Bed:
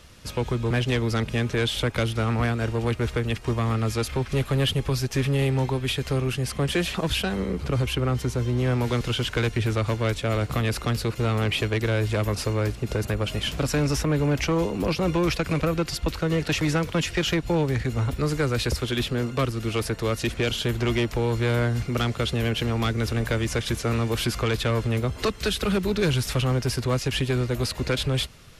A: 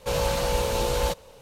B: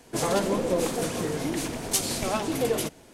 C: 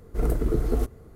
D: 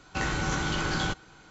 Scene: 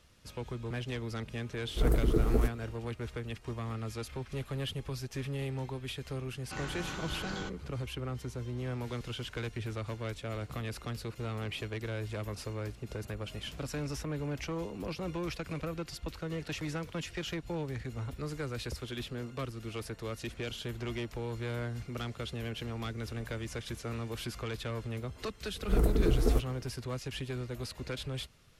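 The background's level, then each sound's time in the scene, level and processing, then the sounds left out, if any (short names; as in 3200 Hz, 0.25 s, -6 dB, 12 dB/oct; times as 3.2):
bed -13.5 dB
1.62 add C -3 dB
6.36 add D -11.5 dB
25.54 add C -2.5 dB
not used: A, B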